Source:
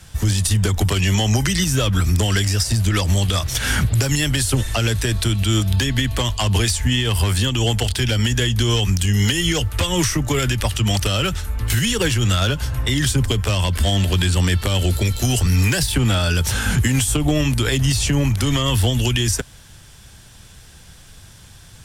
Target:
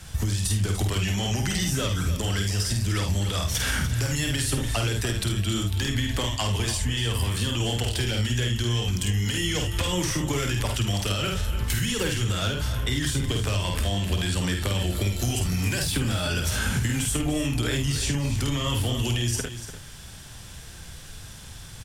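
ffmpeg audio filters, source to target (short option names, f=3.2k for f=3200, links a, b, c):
-filter_complex "[0:a]asplit=2[a][b];[b]aecho=0:1:50|76:0.631|0.299[c];[a][c]amix=inputs=2:normalize=0,acompressor=threshold=-23dB:ratio=6,asplit=2[d][e];[e]aecho=0:1:294:0.266[f];[d][f]amix=inputs=2:normalize=0"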